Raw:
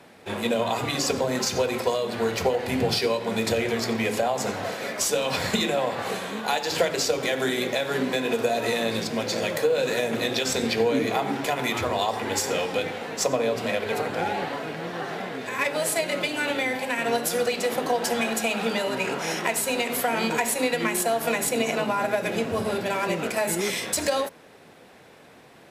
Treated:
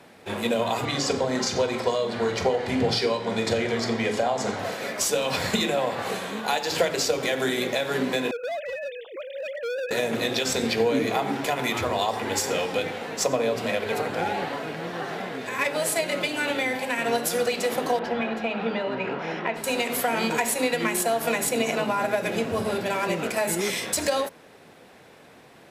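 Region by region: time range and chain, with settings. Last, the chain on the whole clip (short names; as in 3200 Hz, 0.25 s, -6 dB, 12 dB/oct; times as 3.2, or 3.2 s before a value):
0.85–4.59 LPF 7100 Hz + notch 2600 Hz, Q 13 + flutter echo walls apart 7.3 m, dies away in 0.24 s
8.31–9.91 sine-wave speech + hard clip -28 dBFS + short-mantissa float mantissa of 6-bit
17.99–19.64 HPF 42 Hz + air absorption 330 m
whole clip: dry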